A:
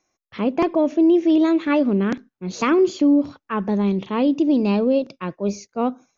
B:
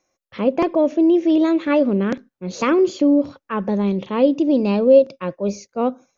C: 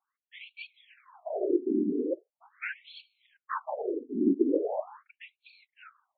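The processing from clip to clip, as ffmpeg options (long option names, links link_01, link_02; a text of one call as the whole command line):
ffmpeg -i in.wav -af "equalizer=frequency=540:width=6.6:gain=10.5" out.wav
ffmpeg -i in.wav -af "afftfilt=real='hypot(re,im)*cos(2*PI*random(0))':imag='hypot(re,im)*sin(2*PI*random(1))':win_size=512:overlap=0.75,afftfilt=real='re*between(b*sr/1024,290*pow(3200/290,0.5+0.5*sin(2*PI*0.41*pts/sr))/1.41,290*pow(3200/290,0.5+0.5*sin(2*PI*0.41*pts/sr))*1.41)':imag='im*between(b*sr/1024,290*pow(3200/290,0.5+0.5*sin(2*PI*0.41*pts/sr))/1.41,290*pow(3200/290,0.5+0.5*sin(2*PI*0.41*pts/sr))*1.41)':win_size=1024:overlap=0.75" out.wav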